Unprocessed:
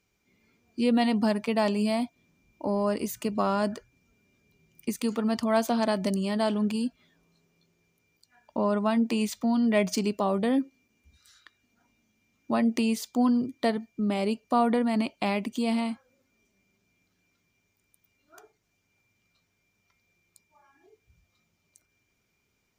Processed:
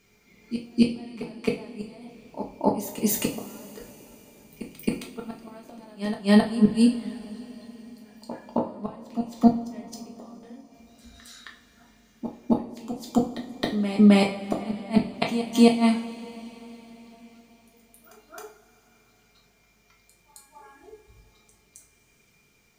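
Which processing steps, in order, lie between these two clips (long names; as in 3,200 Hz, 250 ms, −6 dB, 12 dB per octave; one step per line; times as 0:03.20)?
gate with flip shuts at −19 dBFS, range −35 dB
backwards echo 267 ms −11.5 dB
coupled-rooms reverb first 0.34 s, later 4.6 s, from −22 dB, DRR −0.5 dB
level +8 dB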